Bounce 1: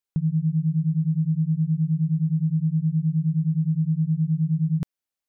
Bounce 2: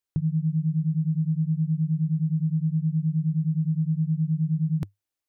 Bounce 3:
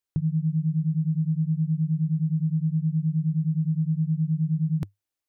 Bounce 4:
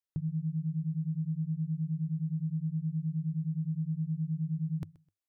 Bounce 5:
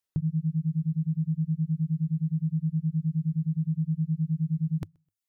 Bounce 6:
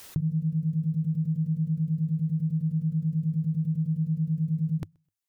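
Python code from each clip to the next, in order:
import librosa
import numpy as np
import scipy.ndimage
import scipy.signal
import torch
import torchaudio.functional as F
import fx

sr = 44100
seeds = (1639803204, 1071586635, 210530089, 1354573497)

y1 = fx.graphic_eq_31(x, sr, hz=(100, 200, 315), db=(9, -12, 6))
y2 = y1
y3 = fx.echo_feedback(y2, sr, ms=128, feedback_pct=24, wet_db=-22)
y3 = y3 * 10.0 ** (-8.5 / 20.0)
y4 = fx.dereverb_blind(y3, sr, rt60_s=0.57)
y4 = y4 * 10.0 ** (6.5 / 20.0)
y5 = fx.pre_swell(y4, sr, db_per_s=55.0)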